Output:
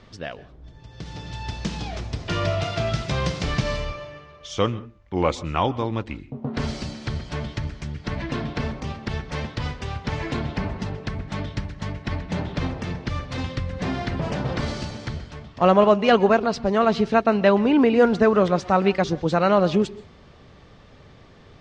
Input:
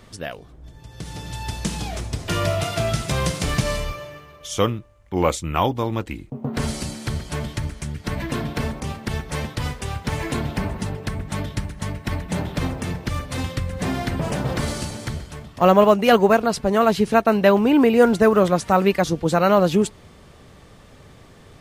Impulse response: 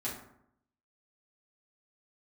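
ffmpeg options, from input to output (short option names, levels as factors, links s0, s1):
-filter_complex "[0:a]lowpass=f=5600:w=0.5412,lowpass=f=5600:w=1.3066,asplit=2[s0][s1];[1:a]atrim=start_sample=2205,atrim=end_sample=3528,adelay=120[s2];[s1][s2]afir=irnorm=-1:irlink=0,volume=0.0841[s3];[s0][s3]amix=inputs=2:normalize=0,volume=0.794"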